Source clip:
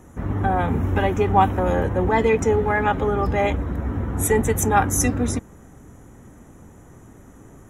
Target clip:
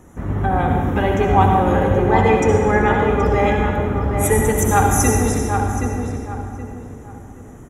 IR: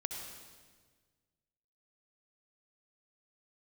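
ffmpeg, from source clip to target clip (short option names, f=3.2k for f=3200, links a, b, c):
-filter_complex "[0:a]asettb=1/sr,asplit=3[a][b][c];[a]atrim=end=4.054[d];[b]atrim=start=4.05:end=4.88,asetpts=PTS-STARTPTS,afade=t=in:d=0.004:c=qsin,afade=t=out:st=0.826:d=0.004:c=qsin,aeval=exprs='sgn(val(0))*max(abs(val(0))-0.00266,0)':c=same[e];[c]atrim=start=4.876[f];[d][e]acrossfade=d=0.004:c1=hsin:c2=qsin[g];[g][f]acrossfade=d=0.004:c1=qsin:c2=hsin,asplit=2[h][i];[i]adelay=774,lowpass=f=2.1k:p=1,volume=-5dB,asplit=2[j][k];[k]adelay=774,lowpass=f=2.1k:p=1,volume=0.32,asplit=2[l][m];[m]adelay=774,lowpass=f=2.1k:p=1,volume=0.32,asplit=2[n][o];[o]adelay=774,lowpass=f=2.1k:p=1,volume=0.32[p];[h][j][l][n][p]amix=inputs=5:normalize=0[q];[1:a]atrim=start_sample=2205[r];[q][r]afir=irnorm=-1:irlink=0,volume=2.5dB"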